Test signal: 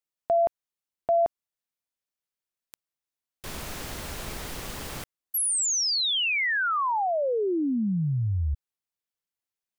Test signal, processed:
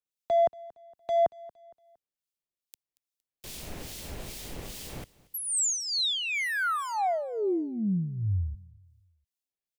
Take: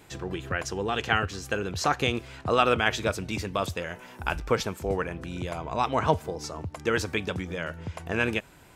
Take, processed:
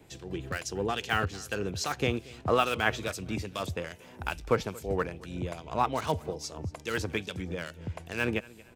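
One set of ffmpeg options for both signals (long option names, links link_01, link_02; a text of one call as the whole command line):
ffmpeg -i in.wav -filter_complex "[0:a]acrossover=split=110|930|1800[link_01][link_02][link_03][link_04];[link_03]acrusher=bits=5:mix=0:aa=0.5[link_05];[link_01][link_02][link_05][link_04]amix=inputs=4:normalize=0,acrossover=split=2300[link_06][link_07];[link_06]aeval=exprs='val(0)*(1-0.7/2+0.7/2*cos(2*PI*2.4*n/s))':channel_layout=same[link_08];[link_07]aeval=exprs='val(0)*(1-0.7/2-0.7/2*cos(2*PI*2.4*n/s))':channel_layout=same[link_09];[link_08][link_09]amix=inputs=2:normalize=0,aecho=1:1:231|462|693:0.0794|0.0318|0.0127" out.wav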